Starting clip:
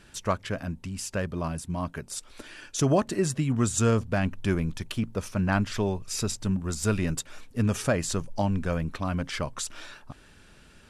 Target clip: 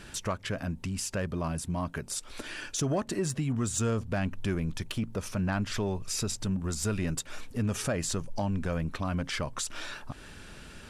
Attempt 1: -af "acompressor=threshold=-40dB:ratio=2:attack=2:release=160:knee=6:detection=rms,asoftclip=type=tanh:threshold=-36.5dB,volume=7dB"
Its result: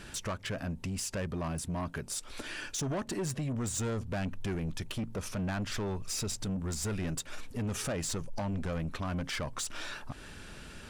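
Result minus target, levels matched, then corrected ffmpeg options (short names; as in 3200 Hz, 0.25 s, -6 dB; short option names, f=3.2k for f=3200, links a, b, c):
soft clip: distortion +15 dB
-af "acompressor=threshold=-40dB:ratio=2:attack=2:release=160:knee=6:detection=rms,asoftclip=type=tanh:threshold=-25dB,volume=7dB"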